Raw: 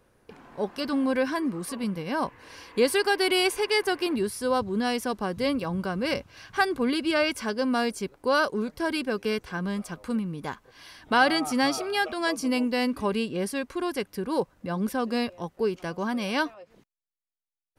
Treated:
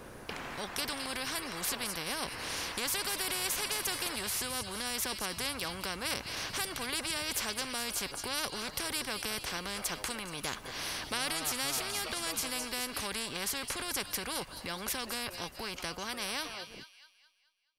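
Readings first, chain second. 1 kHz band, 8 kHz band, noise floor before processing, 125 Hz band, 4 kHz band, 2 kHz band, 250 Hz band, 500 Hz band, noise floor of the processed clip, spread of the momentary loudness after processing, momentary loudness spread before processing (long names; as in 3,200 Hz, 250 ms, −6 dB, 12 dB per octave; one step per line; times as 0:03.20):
−10.0 dB, +5.5 dB, below −85 dBFS, −10.0 dB, −1.5 dB, −7.5 dB, −16.5 dB, −15.5 dB, −57 dBFS, 6 LU, 9 LU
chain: fade-out on the ending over 3.21 s
in parallel at +1 dB: downward compressor, threshold −34 dBFS, peak gain reduction 17.5 dB
on the sum: delay with a high-pass on its return 214 ms, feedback 43%, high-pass 3,100 Hz, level −14 dB
every bin compressed towards the loudest bin 4 to 1
level −8 dB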